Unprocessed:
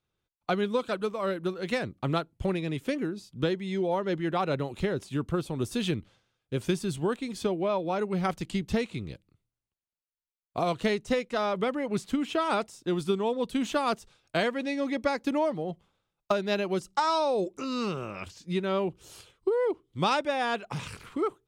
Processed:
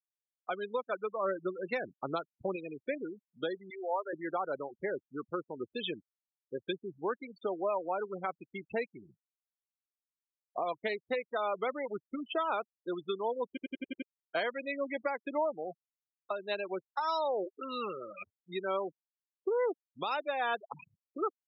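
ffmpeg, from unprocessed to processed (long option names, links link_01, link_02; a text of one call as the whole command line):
ffmpeg -i in.wav -filter_complex "[0:a]asettb=1/sr,asplit=3[link_01][link_02][link_03];[link_01]atrim=end=1.164[link_04];[link_02]atrim=start=1.16:end=2.56,asetpts=PTS-STARTPTS,afade=type=in:duration=0.004:curve=qsin,afade=type=out:start_time=1.396:duration=0.004:curve=qsin,lowshelf=frequency=260:gain=8.5[link_05];[link_03]atrim=start=2.556[link_06];[link_04][link_05]acrossfade=duration=0.004:curve1=hsin:curve2=qsin[link_07];[link_07][link_06]acrossfade=duration=0.004:curve1=qsin:curve2=hsin,asettb=1/sr,asplit=3[link_08][link_09][link_10];[link_08]atrim=end=3.704[link_11];[link_09]atrim=start=3.7:end=4.13,asetpts=PTS-STARTPTS,afade=type=in:duration=0.004:curve=qsin,afade=type=out:start_time=0.426:duration=0.004:curve=qsin,highpass=530[link_12];[link_10]atrim=start=4.126[link_13];[link_11][link_12]acrossfade=duration=0.004:curve1=hsin:curve2=qsin[link_14];[link_14][link_13]acrossfade=duration=0.004:curve1=qsin:curve2=hsin,asplit=7[link_15][link_16][link_17][link_18][link_19][link_20][link_21];[link_15]atrim=end=13.572[link_22];[link_16]atrim=start=13.478:end=13.572[link_23];[link_17]atrim=start=13.478:end=13.572[link_24];[link_18]atrim=start=13.478:end=13.572[link_25];[link_19]atrim=start=13.478:end=13.572[link_26];[link_20]atrim=start=13.478:end=13.572[link_27];[link_21]atrim=start=14.018[link_28];[link_22][link_23]acrossfade=duration=0.004:curve1=hsin:curve2=hsin[link_29];[link_29][link_24]acrossfade=duration=0.004:curve1=hsin:curve2=hsin[link_30];[link_30][link_25]acrossfade=duration=0.004:curve1=hsin:curve2=hsin[link_31];[link_31][link_26]acrossfade=duration=0.004:curve1=hsin:curve2=hsin[link_32];[link_32][link_27]acrossfade=duration=0.004:curve1=hsin:curve2=hsin[link_33];[link_33][link_28]acrossfade=duration=0.004:curve1=hsin:curve2=hsin,afftfilt=real='re*gte(hypot(re,im),0.0447)':imag='im*gte(hypot(re,im),0.0447)':win_size=1024:overlap=0.75,highpass=510,alimiter=limit=-23dB:level=0:latency=1:release=358" out.wav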